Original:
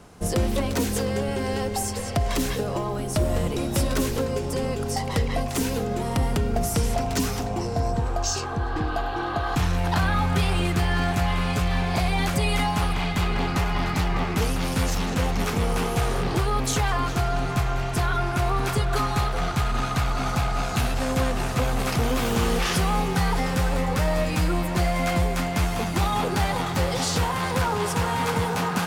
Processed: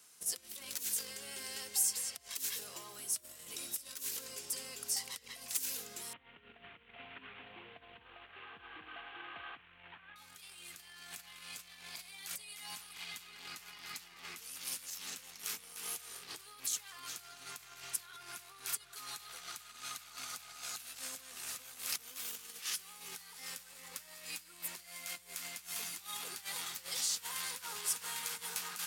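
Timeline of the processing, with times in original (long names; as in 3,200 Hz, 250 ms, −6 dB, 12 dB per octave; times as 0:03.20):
0:06.13–0:10.16: variable-slope delta modulation 16 kbit/s
whole clip: parametric band 720 Hz −6.5 dB 1.1 octaves; compressor whose output falls as the input rises −27 dBFS, ratio −0.5; first difference; level −3.5 dB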